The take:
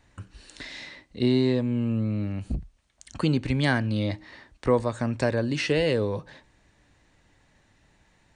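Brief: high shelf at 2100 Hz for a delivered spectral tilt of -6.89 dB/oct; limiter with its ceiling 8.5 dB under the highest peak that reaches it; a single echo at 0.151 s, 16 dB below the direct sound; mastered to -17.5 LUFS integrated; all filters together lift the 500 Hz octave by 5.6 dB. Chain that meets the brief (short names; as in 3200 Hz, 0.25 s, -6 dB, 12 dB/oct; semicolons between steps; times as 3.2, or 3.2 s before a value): bell 500 Hz +7 dB; high shelf 2100 Hz -8.5 dB; limiter -14.5 dBFS; echo 0.151 s -16 dB; gain +8.5 dB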